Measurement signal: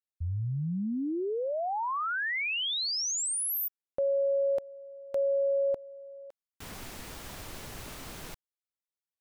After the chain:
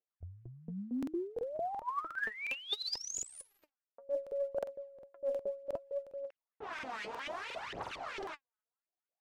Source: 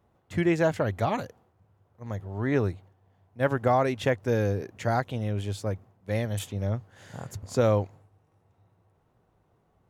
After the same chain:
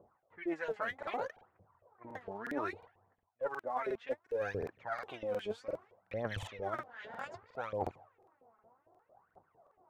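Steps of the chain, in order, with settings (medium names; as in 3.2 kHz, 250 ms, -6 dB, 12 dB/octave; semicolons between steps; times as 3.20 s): LFO band-pass saw up 4.4 Hz 460–2700 Hz; phaser 0.64 Hz, delay 4.9 ms, feedback 72%; reverse; compression 16:1, threshold -42 dBFS; reverse; level-controlled noise filter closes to 1.1 kHz, open at -44 dBFS; crackling interface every 0.36 s, samples 2048, repeat, from 0.98 s; trim +8.5 dB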